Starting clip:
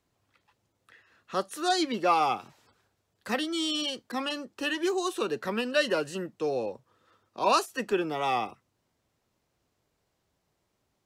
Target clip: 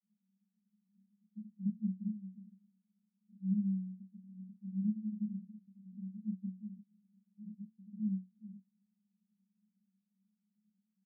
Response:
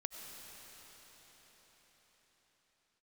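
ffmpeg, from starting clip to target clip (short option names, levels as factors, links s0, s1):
-filter_complex "[0:a]acompressor=threshold=0.0178:ratio=6,asoftclip=type=tanh:threshold=0.0141,asuperpass=centerf=330:order=20:qfactor=5.8,asplit=2[s0][s1];[s1]adelay=32,volume=0.596[s2];[s0][s2]amix=inputs=2:normalize=0,asetrate=26990,aresample=44100,atempo=1.63392,volume=2.82"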